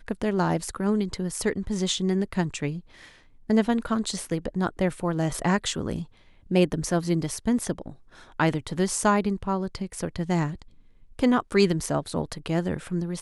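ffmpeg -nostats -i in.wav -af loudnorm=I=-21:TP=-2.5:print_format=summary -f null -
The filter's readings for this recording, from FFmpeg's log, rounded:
Input Integrated:    -26.4 LUFS
Input True Peak:      -7.5 dBTP
Input LRA:             0.7 LU
Input Threshold:     -36.9 LUFS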